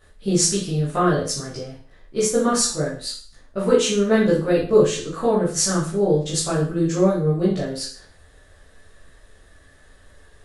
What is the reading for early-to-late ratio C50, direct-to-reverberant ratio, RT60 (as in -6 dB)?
4.5 dB, -8.5 dB, 0.45 s